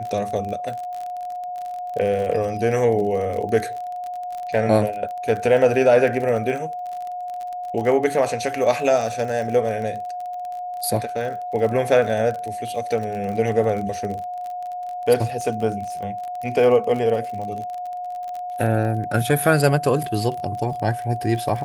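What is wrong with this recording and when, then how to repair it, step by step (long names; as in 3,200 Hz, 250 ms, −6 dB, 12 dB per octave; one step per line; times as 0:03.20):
surface crackle 32 per second −28 dBFS
whistle 720 Hz −27 dBFS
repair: click removal
notch filter 720 Hz, Q 30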